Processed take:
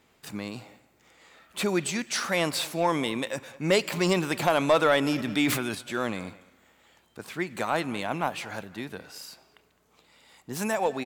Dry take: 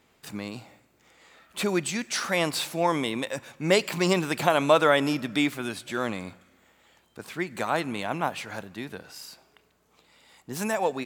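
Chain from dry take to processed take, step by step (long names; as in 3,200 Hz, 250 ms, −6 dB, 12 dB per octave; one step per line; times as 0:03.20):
soft clipping −11.5 dBFS, distortion −19 dB
far-end echo of a speakerphone 210 ms, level −18 dB
0:05.16–0:05.75: level that may fall only so fast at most 49 dB per second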